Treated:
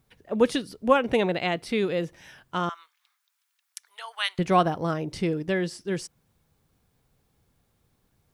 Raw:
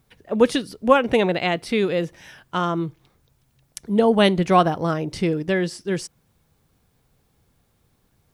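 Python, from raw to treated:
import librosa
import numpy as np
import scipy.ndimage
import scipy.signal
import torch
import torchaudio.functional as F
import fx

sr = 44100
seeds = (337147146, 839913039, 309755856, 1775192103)

y = fx.cheby2_highpass(x, sr, hz=260.0, order=4, stop_db=70, at=(2.69, 4.39))
y = y * 10.0 ** (-4.5 / 20.0)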